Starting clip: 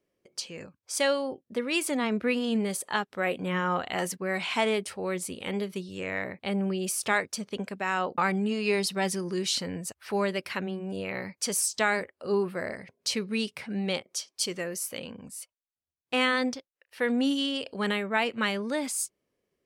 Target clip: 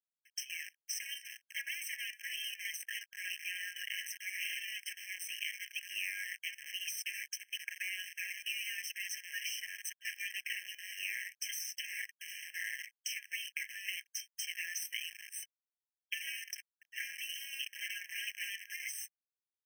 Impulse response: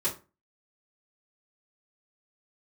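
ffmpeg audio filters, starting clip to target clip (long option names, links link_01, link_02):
-filter_complex "[0:a]afftdn=noise_reduction=13:noise_floor=-45,afftfilt=real='re*lt(hypot(re,im),0.0708)':imag='im*lt(hypot(re,im),0.0708)':win_size=1024:overlap=0.75,equalizer=frequency=10000:width_type=o:width=0.75:gain=-15,aecho=1:1:6.7:0.62,adynamicequalizer=threshold=0.00224:dfrequency=5200:dqfactor=1.9:tfrequency=5200:tqfactor=1.9:attack=5:release=100:ratio=0.375:range=1.5:mode=cutabove:tftype=bell,acrossover=split=360[link_01][link_02];[link_01]alimiter=level_in=21.5dB:limit=-24dB:level=0:latency=1:release=169,volume=-21.5dB[link_03];[link_02]acompressor=threshold=-49dB:ratio=10[link_04];[link_03][link_04]amix=inputs=2:normalize=0,acrusher=bits=9:dc=4:mix=0:aa=0.000001,asuperstop=centerf=4900:order=4:qfactor=8,afftfilt=real='re*eq(mod(floor(b*sr/1024/1600),2),1)':imag='im*eq(mod(floor(b*sr/1024/1600),2),1)':win_size=1024:overlap=0.75,volume=14dB"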